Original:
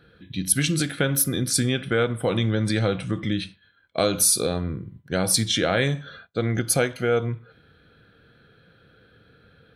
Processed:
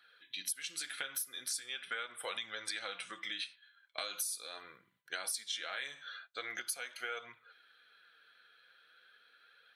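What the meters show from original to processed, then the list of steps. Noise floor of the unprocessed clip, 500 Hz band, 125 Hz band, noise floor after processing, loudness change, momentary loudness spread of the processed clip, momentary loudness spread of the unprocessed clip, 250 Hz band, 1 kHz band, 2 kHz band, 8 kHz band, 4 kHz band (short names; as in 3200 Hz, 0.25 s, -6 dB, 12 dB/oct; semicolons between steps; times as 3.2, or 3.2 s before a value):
-58 dBFS, -25.5 dB, under -40 dB, -69 dBFS, -16.5 dB, 8 LU, 12 LU, -36.0 dB, -14.5 dB, -11.0 dB, -16.0 dB, -11.5 dB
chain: HPF 1400 Hz 12 dB/oct; compressor 12:1, threshold -33 dBFS, peak gain reduction 19.5 dB; flange 0.41 Hz, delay 0.9 ms, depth 7.8 ms, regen -36%; gain +1.5 dB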